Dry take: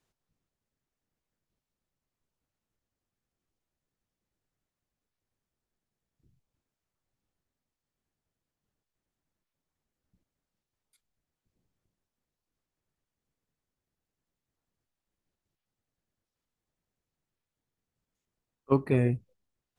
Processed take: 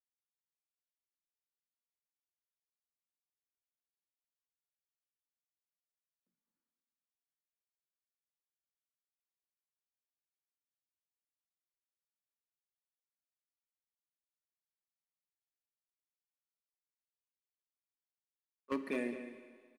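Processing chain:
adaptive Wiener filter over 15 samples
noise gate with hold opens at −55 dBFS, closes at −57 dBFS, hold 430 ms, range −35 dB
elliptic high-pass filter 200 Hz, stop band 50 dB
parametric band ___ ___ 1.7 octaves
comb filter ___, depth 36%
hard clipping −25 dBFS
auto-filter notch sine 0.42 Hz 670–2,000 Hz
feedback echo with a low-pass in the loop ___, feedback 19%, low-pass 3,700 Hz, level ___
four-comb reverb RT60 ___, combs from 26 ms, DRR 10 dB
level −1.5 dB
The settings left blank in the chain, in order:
300 Hz, −10 dB, 3.4 ms, 212 ms, −11 dB, 1.9 s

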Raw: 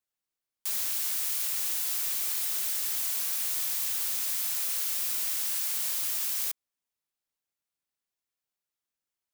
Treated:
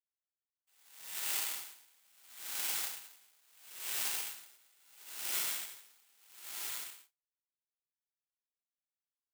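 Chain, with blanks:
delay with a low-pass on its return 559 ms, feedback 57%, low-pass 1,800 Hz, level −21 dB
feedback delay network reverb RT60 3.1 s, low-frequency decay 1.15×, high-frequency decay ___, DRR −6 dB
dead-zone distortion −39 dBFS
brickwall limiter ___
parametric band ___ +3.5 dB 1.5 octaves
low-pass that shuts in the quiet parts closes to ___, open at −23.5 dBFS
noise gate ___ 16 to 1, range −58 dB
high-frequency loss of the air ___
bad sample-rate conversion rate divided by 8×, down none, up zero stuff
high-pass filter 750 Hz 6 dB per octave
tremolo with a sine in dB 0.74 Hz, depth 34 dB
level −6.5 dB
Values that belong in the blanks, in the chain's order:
0.95×, −13.5 dBFS, 2,300 Hz, 1,400 Hz, −49 dBFS, 120 metres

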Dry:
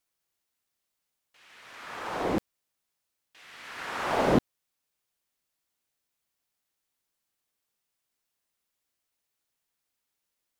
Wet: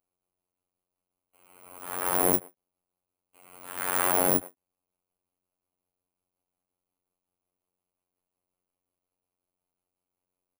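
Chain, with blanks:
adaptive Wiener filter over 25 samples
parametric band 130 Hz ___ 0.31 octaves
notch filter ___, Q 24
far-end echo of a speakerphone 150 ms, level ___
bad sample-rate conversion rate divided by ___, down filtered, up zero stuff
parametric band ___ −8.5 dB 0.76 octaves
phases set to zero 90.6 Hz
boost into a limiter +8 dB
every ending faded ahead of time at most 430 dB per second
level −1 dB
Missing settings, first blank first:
−4.5 dB, 3,800 Hz, −26 dB, 4×, 13,000 Hz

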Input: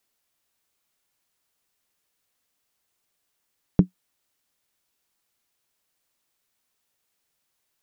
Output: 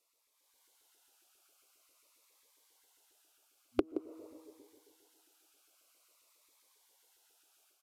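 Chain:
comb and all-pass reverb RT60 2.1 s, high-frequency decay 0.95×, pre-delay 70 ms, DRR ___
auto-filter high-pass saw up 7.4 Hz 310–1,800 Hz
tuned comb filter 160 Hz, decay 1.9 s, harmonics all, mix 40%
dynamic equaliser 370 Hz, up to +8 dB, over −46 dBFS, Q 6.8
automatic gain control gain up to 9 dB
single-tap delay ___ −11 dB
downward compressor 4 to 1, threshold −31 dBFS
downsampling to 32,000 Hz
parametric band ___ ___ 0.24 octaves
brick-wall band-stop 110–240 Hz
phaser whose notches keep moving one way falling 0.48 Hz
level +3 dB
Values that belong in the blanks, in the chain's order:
18 dB, 173 ms, 1,800 Hz, −11 dB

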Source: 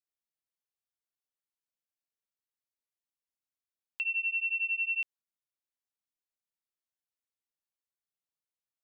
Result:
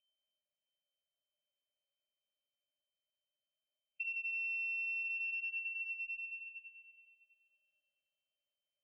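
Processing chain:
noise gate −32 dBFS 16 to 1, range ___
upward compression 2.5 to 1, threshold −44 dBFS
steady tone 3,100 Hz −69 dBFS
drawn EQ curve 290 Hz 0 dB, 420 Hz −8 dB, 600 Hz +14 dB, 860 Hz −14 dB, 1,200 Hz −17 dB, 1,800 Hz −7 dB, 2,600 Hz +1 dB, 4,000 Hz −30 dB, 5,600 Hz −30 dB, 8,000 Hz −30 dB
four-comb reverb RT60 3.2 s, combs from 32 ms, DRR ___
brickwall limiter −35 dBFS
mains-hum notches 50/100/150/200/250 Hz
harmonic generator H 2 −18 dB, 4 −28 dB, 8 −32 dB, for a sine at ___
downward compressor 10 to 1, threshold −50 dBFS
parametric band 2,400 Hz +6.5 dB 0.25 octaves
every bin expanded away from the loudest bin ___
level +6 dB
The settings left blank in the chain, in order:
−48 dB, −1.5 dB, −34.5 dBFS, 1.5 to 1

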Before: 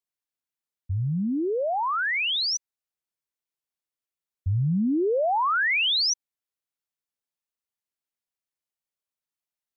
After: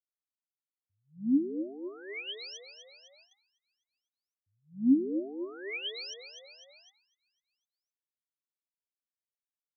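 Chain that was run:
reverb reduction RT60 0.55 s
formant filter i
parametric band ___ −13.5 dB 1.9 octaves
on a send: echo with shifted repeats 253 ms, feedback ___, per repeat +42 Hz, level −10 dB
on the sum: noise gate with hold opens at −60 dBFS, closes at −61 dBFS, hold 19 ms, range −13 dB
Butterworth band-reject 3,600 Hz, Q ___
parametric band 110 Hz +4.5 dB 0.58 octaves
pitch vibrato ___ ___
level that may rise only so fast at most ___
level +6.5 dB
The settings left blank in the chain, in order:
1,900 Hz, 57%, 5.6, 1.6 Hz, 26 cents, 210 dB per second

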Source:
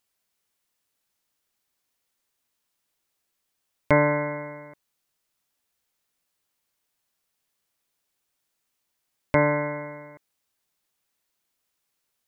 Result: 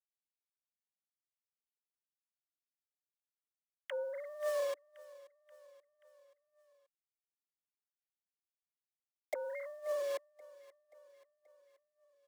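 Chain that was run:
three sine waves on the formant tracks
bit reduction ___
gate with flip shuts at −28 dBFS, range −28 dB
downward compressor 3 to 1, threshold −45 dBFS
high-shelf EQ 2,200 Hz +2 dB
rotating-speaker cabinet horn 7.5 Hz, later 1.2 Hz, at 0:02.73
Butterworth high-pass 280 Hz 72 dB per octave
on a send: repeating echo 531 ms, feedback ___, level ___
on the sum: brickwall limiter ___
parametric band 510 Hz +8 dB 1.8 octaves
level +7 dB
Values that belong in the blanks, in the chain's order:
8 bits, 56%, −21 dB, −37.5 dBFS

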